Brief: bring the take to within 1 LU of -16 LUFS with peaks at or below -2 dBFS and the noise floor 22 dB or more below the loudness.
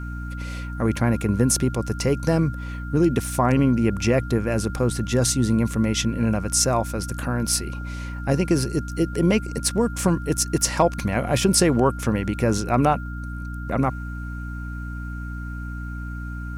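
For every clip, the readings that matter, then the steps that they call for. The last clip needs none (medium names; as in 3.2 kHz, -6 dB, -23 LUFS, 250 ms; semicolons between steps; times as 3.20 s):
hum 60 Hz; highest harmonic 300 Hz; hum level -29 dBFS; steady tone 1.4 kHz; tone level -38 dBFS; loudness -23.0 LUFS; peak level -6.0 dBFS; loudness target -16.0 LUFS
-> hum notches 60/120/180/240/300 Hz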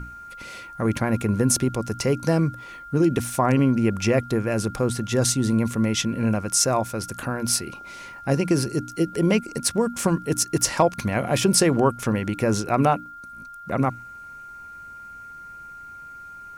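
hum not found; steady tone 1.4 kHz; tone level -38 dBFS
-> band-stop 1.4 kHz, Q 30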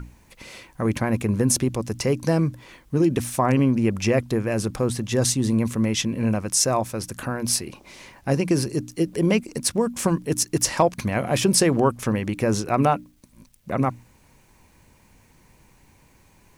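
steady tone not found; loudness -23.0 LUFS; peak level -7.0 dBFS; loudness target -16.0 LUFS
-> trim +7 dB; peak limiter -2 dBFS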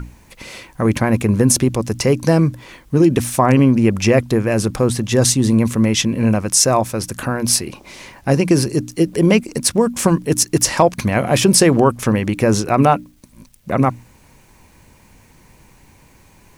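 loudness -16.0 LUFS; peak level -2.0 dBFS; noise floor -50 dBFS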